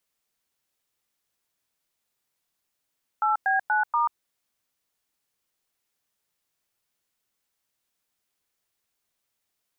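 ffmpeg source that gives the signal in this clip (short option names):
-f lavfi -i "aevalsrc='0.075*clip(min(mod(t,0.239),0.137-mod(t,0.239))/0.002,0,1)*(eq(floor(t/0.239),0)*(sin(2*PI*852*mod(t,0.239))+sin(2*PI*1336*mod(t,0.239)))+eq(floor(t/0.239),1)*(sin(2*PI*770*mod(t,0.239))+sin(2*PI*1633*mod(t,0.239)))+eq(floor(t/0.239),2)*(sin(2*PI*852*mod(t,0.239))+sin(2*PI*1477*mod(t,0.239)))+eq(floor(t/0.239),3)*(sin(2*PI*941*mod(t,0.239))+sin(2*PI*1209*mod(t,0.239))))':d=0.956:s=44100"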